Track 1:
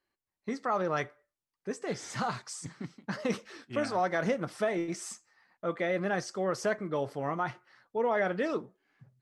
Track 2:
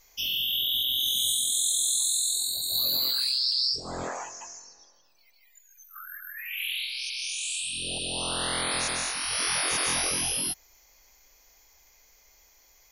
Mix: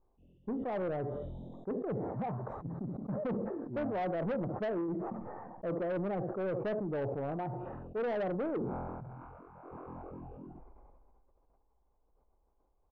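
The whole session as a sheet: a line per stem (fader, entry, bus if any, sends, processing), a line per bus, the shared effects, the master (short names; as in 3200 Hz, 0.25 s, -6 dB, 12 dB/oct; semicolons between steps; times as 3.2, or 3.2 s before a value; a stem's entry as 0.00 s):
+1.5 dB, 0.00 s, no send, echo send -18 dB, dry
-4.0 dB, 0.00 s, no send, echo send -23 dB, low shelf 430 Hz -7 dB; comb 0.8 ms, depth 53%; auto duck -17 dB, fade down 1.25 s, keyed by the first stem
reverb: off
echo: echo 71 ms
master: inverse Chebyshev low-pass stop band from 4300 Hz, stop band 80 dB; soft clip -30.5 dBFS, distortion -10 dB; sustainer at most 24 dB/s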